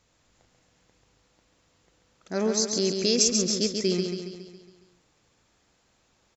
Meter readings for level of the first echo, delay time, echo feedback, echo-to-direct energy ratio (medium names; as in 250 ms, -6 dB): -5.0 dB, 138 ms, 54%, -3.5 dB